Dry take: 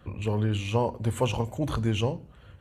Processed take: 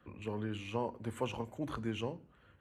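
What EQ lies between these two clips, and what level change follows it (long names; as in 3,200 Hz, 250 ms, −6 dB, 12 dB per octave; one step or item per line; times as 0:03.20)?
three-way crossover with the lows and the highs turned down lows −18 dB, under 240 Hz, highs −15 dB, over 2,000 Hz
parametric band 640 Hz −12 dB 2.3 octaves
+1.0 dB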